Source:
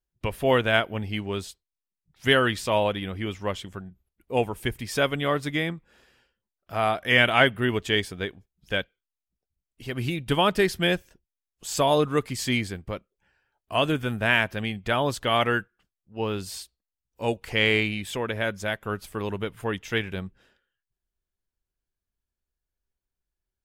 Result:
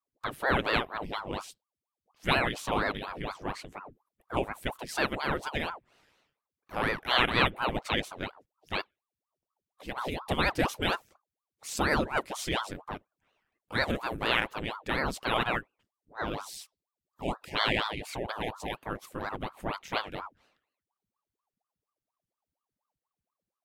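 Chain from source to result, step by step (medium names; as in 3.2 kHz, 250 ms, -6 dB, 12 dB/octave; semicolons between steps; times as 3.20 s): spectral selection erased 16.49–18.77 s, 800–1800 Hz; ring modulator with a swept carrier 640 Hz, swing 90%, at 4.2 Hz; trim -3 dB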